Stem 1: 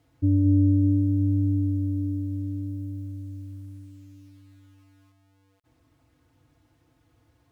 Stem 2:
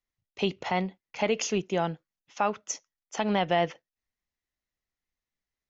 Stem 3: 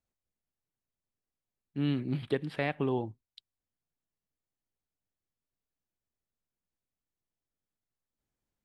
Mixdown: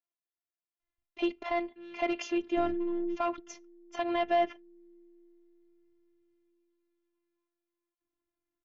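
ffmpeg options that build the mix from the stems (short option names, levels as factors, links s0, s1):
-filter_complex "[0:a]aecho=1:1:3.8:0.56,acompressor=threshold=0.0447:ratio=6,adelay=2350,volume=0.891[s0];[1:a]volume=7.5,asoftclip=hard,volume=0.133,adelay=800,volume=1.19[s1];[2:a]highpass=460,asoftclip=type=tanh:threshold=0.0188,volume=0.668,asplit=2[s2][s3];[s3]apad=whole_len=435205[s4];[s0][s4]sidechaingate=range=0.0794:threshold=0.00141:ratio=16:detection=peak[s5];[s5][s1][s2]amix=inputs=3:normalize=0,lowpass=3000,afftfilt=real='hypot(re,im)*cos(PI*b)':imag='0':win_size=512:overlap=0.75"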